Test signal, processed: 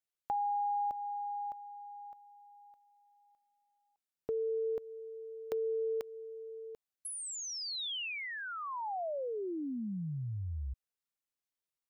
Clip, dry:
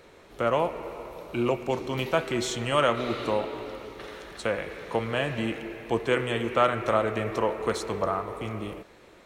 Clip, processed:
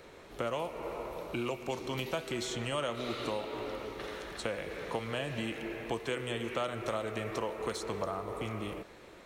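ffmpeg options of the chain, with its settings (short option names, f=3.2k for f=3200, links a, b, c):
-filter_complex "[0:a]acrossover=split=840|3200[a][b][c];[a]acompressor=threshold=-35dB:ratio=4[d];[b]acompressor=threshold=-43dB:ratio=4[e];[c]acompressor=threshold=-41dB:ratio=4[f];[d][e][f]amix=inputs=3:normalize=0"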